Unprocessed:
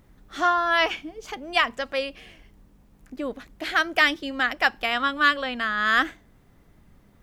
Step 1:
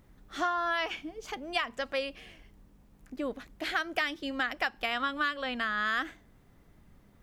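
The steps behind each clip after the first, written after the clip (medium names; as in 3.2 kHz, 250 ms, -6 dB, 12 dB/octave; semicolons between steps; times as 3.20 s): compression 6:1, threshold -23 dBFS, peak gain reduction 9.5 dB; trim -3.5 dB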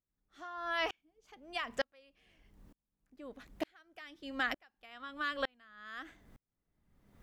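sawtooth tremolo in dB swelling 1.1 Hz, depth 40 dB; trim +2.5 dB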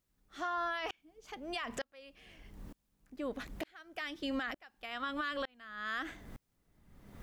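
compression 2.5:1, threshold -43 dBFS, peak gain reduction 10.5 dB; peak limiter -38.5 dBFS, peak gain reduction 10.5 dB; trim +10.5 dB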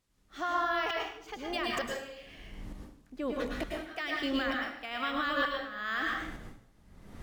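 plate-style reverb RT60 0.63 s, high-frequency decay 0.9×, pre-delay 95 ms, DRR -1 dB; decimation joined by straight lines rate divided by 2×; trim +3.5 dB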